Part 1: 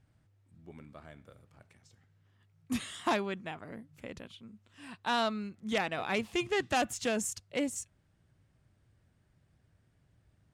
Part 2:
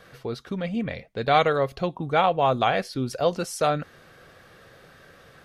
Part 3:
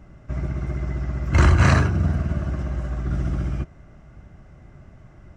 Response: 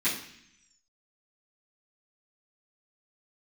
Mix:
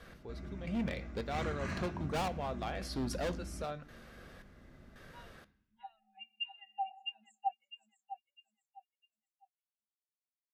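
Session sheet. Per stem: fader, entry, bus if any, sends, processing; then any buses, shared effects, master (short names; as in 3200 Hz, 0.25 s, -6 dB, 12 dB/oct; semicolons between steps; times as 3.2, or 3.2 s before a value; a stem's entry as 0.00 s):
+2.5 dB, 0.05 s, bus A, send -23.5 dB, echo send -8.5 dB, passive tone stack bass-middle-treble 10-0-10; small resonant body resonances 210/780/2800 Hz, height 12 dB, ringing for 95 ms; spectral expander 4:1
-5.5 dB, 0.00 s, no bus, send -22.5 dB, no echo send, step gate "x....xxx" 112 bpm -12 dB; overloaded stage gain 27.5 dB
-12.5 dB, 0.00 s, bus A, send -9.5 dB, no echo send, compressor 1.5:1, threshold -41 dBFS, peak gain reduction 10.5 dB
bus A: 0.0 dB, compressor 2.5:1, threshold -40 dBFS, peak gain reduction 13.5 dB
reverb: on, RT60 0.65 s, pre-delay 3 ms
echo: feedback echo 0.654 s, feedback 28%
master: dry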